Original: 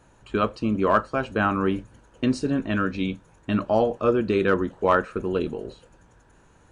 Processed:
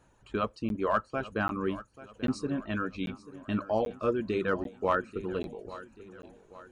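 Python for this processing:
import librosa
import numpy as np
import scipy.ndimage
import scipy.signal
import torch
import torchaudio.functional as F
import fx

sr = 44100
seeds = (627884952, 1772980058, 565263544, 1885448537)

y = fx.dereverb_blind(x, sr, rt60_s=0.65)
y = fx.echo_feedback(y, sr, ms=836, feedback_pct=47, wet_db=-16.5)
y = fx.buffer_crackle(y, sr, first_s=0.69, period_s=0.79, block=512, kind='zero')
y = F.gain(torch.from_numpy(y), -7.0).numpy()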